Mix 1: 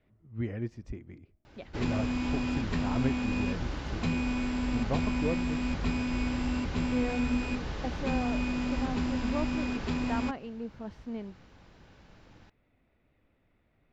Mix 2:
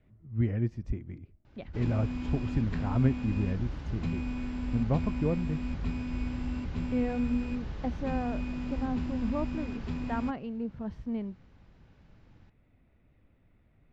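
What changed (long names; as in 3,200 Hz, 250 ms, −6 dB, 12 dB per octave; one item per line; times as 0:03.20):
background −8.5 dB
master: add bass and treble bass +8 dB, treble −4 dB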